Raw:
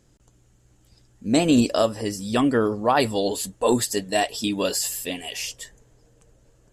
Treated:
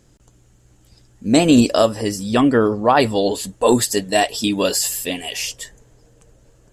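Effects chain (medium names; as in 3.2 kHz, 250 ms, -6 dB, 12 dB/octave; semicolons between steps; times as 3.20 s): 2.23–3.49 s: treble shelf 6.2 kHz -8 dB; trim +5.5 dB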